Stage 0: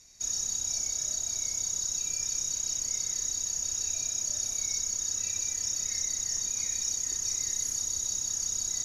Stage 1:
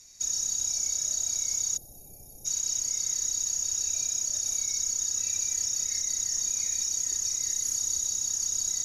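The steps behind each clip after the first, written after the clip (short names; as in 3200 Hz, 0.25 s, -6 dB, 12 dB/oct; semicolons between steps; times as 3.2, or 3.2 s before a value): spectral gain 1.77–2.46, 870–9600 Hz -29 dB; high shelf 4500 Hz +7.5 dB; limiter -19 dBFS, peak gain reduction 5 dB; gain -1 dB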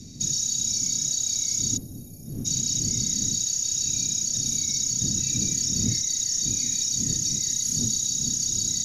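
wind noise 180 Hz -45 dBFS; ten-band EQ 125 Hz +10 dB, 250 Hz +11 dB, 1000 Hz -10 dB, 4000 Hz +10 dB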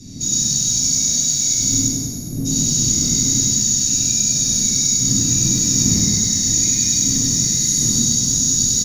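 soft clip -15 dBFS, distortion -25 dB; feedback echo 0.1 s, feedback 50%, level -4 dB; plate-style reverb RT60 2.5 s, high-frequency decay 0.5×, DRR -9 dB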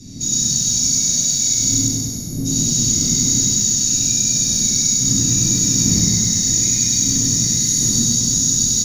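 split-band echo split 580 Hz, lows 0.117 s, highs 0.164 s, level -10.5 dB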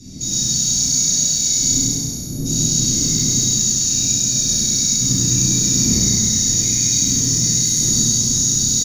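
doubler 32 ms -2.5 dB; gain -1.5 dB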